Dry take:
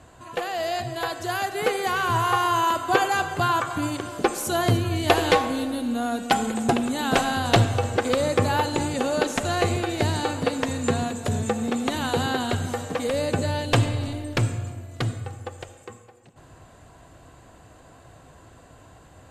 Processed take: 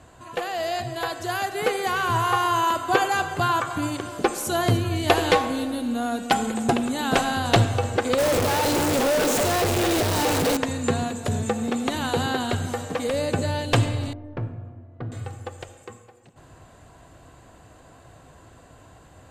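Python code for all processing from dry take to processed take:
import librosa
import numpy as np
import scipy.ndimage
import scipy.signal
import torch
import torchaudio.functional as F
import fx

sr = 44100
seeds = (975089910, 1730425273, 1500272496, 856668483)

y = fx.chain(x, sr, fx.clip_1bit(),
    fx.peak_eq(hz=480.0, db=6.0, octaves=1.2), at=(8.18, 10.57))
y = fx.chain(y, sr, fx.lowpass(hz=1100.0, slope=12),
    fx.comb_fb(f0_hz=81.0, decay_s=0.58, harmonics='all', damping=0.0, mix_pct=60), at=(14.13, 15.12))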